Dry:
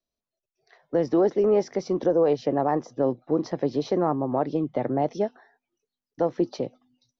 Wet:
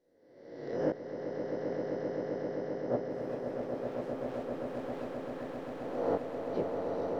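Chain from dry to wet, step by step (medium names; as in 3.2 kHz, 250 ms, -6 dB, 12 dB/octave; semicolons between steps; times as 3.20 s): reverse spectral sustain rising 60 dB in 1.06 s; low-pass that closes with the level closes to 1 kHz, closed at -17 dBFS; 3.10–5.14 s: waveshaping leveller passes 5; inverted gate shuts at -16 dBFS, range -31 dB; chorus 2 Hz, delay 16.5 ms, depth 7 ms; echo with a slow build-up 131 ms, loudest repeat 8, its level -6.5 dB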